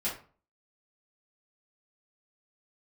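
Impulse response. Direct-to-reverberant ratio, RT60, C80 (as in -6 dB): -10.0 dB, 0.40 s, 13.0 dB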